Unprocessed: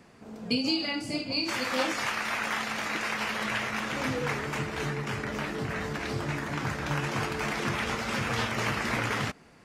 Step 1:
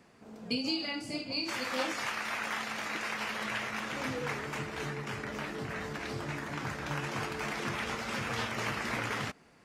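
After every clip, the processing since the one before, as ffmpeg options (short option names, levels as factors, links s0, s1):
-af "lowshelf=f=160:g=-4,volume=0.596"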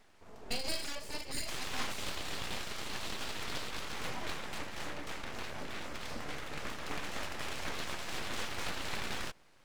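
-af "aeval=exprs='abs(val(0))':c=same,volume=0.891"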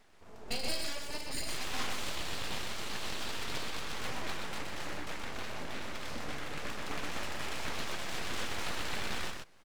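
-af "aecho=1:1:124:0.596"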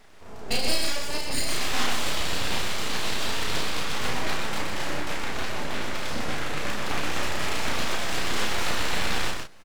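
-filter_complex "[0:a]asplit=2[s0][s1];[s1]adelay=33,volume=0.668[s2];[s0][s2]amix=inputs=2:normalize=0,volume=2.66"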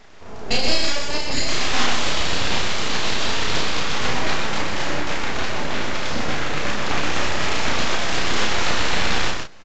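-af "aresample=16000,aresample=44100,volume=2"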